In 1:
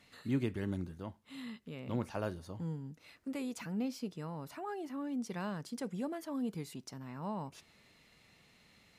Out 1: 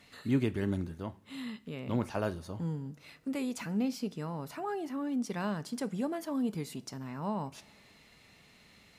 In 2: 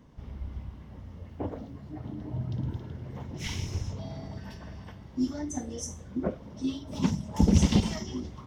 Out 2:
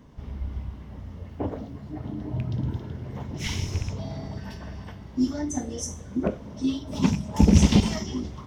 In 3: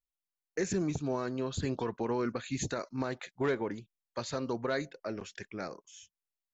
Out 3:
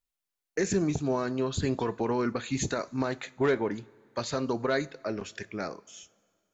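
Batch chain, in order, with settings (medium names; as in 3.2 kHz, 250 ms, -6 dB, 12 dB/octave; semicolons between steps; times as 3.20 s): rattle on loud lows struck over -25 dBFS, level -32 dBFS; two-slope reverb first 0.27 s, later 2.1 s, from -18 dB, DRR 14 dB; trim +4.5 dB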